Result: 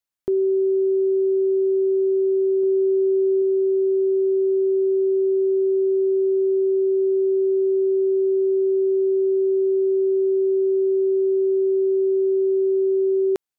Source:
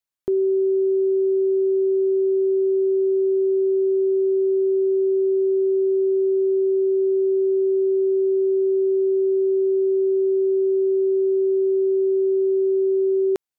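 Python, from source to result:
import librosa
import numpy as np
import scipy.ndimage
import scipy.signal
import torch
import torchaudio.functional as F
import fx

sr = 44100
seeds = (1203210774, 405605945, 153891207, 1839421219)

y = fx.dynamic_eq(x, sr, hz=220.0, q=1.9, threshold_db=-38.0, ratio=4.0, max_db=4, at=(2.63, 3.42))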